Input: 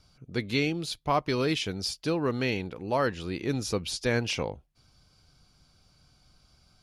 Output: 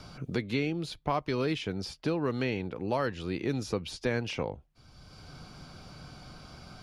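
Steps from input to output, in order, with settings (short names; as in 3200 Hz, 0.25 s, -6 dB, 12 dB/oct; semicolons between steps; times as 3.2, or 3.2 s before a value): high shelf 4000 Hz -9.5 dB; three-band squash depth 70%; gain -2 dB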